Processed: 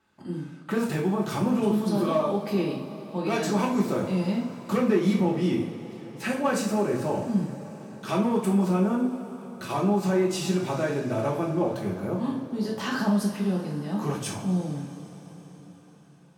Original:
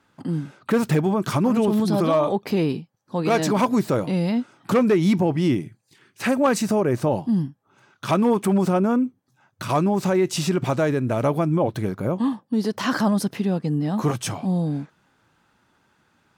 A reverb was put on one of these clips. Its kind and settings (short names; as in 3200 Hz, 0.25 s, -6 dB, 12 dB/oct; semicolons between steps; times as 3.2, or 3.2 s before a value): two-slope reverb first 0.4 s, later 5 s, from -19 dB, DRR -3 dB; gain -9.5 dB